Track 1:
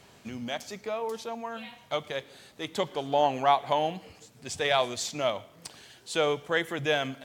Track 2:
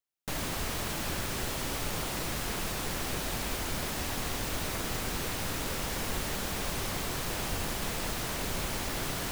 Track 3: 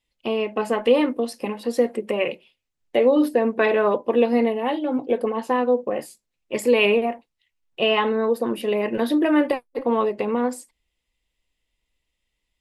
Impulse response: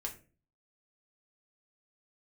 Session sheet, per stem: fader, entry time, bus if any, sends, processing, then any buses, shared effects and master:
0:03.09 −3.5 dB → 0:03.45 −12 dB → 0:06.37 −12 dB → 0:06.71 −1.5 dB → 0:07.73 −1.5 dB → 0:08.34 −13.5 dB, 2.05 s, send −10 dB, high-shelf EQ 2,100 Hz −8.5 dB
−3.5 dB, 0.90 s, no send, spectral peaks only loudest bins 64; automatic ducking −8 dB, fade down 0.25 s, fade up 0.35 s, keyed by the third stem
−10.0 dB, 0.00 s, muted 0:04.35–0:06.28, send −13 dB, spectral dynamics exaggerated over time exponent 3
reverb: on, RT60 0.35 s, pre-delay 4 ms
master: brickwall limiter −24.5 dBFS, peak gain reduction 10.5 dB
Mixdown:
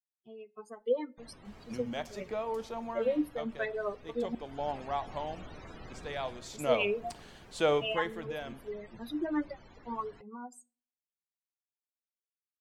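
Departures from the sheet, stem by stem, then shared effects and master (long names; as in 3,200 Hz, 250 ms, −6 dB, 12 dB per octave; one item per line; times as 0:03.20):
stem 1: entry 2.05 s → 1.45 s
stem 2 −3.5 dB → −11.5 dB
master: missing brickwall limiter −24.5 dBFS, peak gain reduction 10.5 dB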